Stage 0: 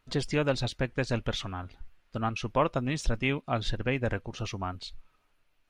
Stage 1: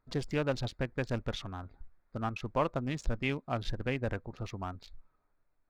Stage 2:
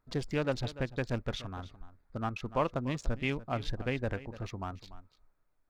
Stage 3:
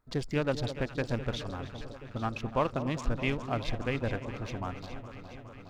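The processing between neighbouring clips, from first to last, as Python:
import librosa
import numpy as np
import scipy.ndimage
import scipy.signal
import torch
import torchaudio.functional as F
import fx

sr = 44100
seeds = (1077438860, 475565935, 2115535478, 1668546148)

y1 = fx.wiener(x, sr, points=15)
y1 = y1 * 10.0 ** (-4.0 / 20.0)
y2 = y1 + 10.0 ** (-16.0 / 20.0) * np.pad(y1, (int(292 * sr / 1000.0), 0))[:len(y1)]
y3 = fx.echo_alternate(y2, sr, ms=207, hz=930.0, feedback_pct=85, wet_db=-11.0)
y3 = y3 * 10.0 ** (1.5 / 20.0)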